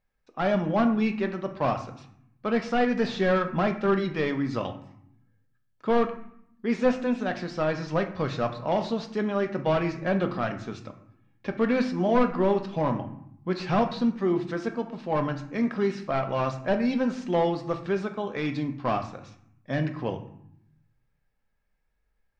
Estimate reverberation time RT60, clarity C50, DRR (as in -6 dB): 0.75 s, 11.0 dB, 6.0 dB